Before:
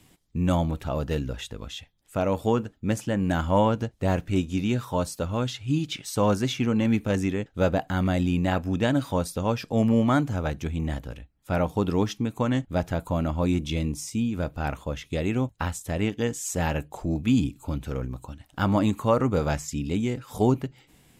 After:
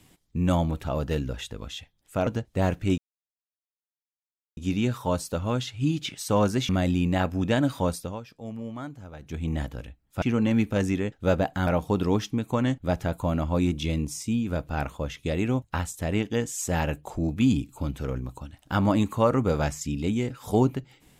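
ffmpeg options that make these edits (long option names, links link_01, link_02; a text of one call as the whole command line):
ffmpeg -i in.wav -filter_complex "[0:a]asplit=8[link_01][link_02][link_03][link_04][link_05][link_06][link_07][link_08];[link_01]atrim=end=2.272[link_09];[link_02]atrim=start=3.728:end=4.44,asetpts=PTS-STARTPTS,afade=type=out:start_time=0.708:duration=0.004:curve=hsin,apad=pad_dur=1.59[link_10];[link_03]atrim=start=4.44:end=6.562,asetpts=PTS-STARTPTS,afade=type=in:duration=0.004:curve=hsin[link_11];[link_04]atrim=start=8.008:end=9.52,asetpts=PTS-STARTPTS,afade=type=out:start_time=1.232:duration=0.28:silence=0.177828[link_12];[link_05]atrim=start=9.52:end=10.51,asetpts=PTS-STARTPTS,volume=-15dB[link_13];[link_06]atrim=start=10.51:end=11.542,asetpts=PTS-STARTPTS,afade=type=in:duration=0.28:silence=0.177828[link_14];[link_07]atrim=start=6.558:end=8.012[link_15];[link_08]atrim=start=11.538[link_16];[link_10][link_11]concat=n=2:v=0:a=1[link_17];[link_09][link_17]acrossfade=duration=0.004:curve1=hsin:curve2=hsin[link_18];[link_12][link_13][link_14]concat=n=3:v=0:a=1[link_19];[link_18][link_19]acrossfade=duration=0.004:curve1=hsin:curve2=hsin[link_20];[link_20][link_15]acrossfade=duration=0.004:curve1=hsin:curve2=hsin[link_21];[link_21][link_16]acrossfade=duration=0.004:curve1=hsin:curve2=hsin" out.wav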